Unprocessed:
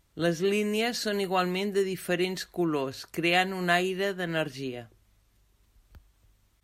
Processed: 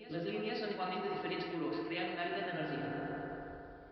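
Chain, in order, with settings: granular stretch 0.59×, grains 0.116 s; notches 60/120/180 Hz; thin delay 0.121 s, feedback 56%, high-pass 1500 Hz, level -14.5 dB; FDN reverb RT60 2.9 s, low-frequency decay 0.75×, high-frequency decay 0.3×, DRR -1 dB; reverse; compressor 5:1, threshold -37 dBFS, peak gain reduction 16.5 dB; reverse; downsampling 11025 Hz; on a send: reverse echo 0.454 s -14 dB

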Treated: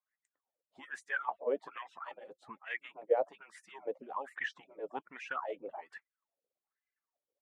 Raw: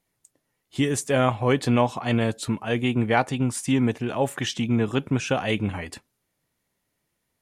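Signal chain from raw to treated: median-filter separation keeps percussive; wah 1.2 Hz 500–2000 Hz, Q 10; dynamic EQ 300 Hz, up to +3 dB, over -49 dBFS, Q 1; gain +3.5 dB

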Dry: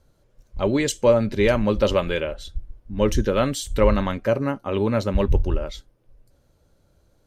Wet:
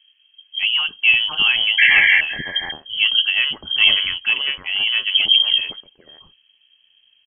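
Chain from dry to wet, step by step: painted sound noise, 1.78–2.21, 800–1600 Hz -14 dBFS; bands offset in time lows, highs 0.51 s, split 2100 Hz; inverted band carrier 3200 Hz; gain +1.5 dB

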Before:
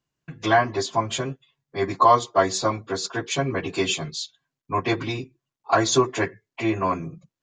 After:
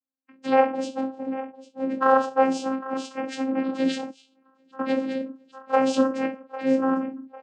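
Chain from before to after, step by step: 0.9–1.86 median filter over 41 samples; de-hum 202.5 Hz, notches 10; 2.6–3.48 dynamic EQ 610 Hz, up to -7 dB, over -36 dBFS, Q 0.81; feedback echo 0.8 s, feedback 40%, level -15 dB; reverb, pre-delay 4 ms, DRR -0.5 dB; 4.1–4.79 compressor 3:1, threshold -44 dBFS, peak gain reduction 19.5 dB; spectral noise reduction 14 dB; vocoder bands 8, saw 265 Hz; gain -3.5 dB

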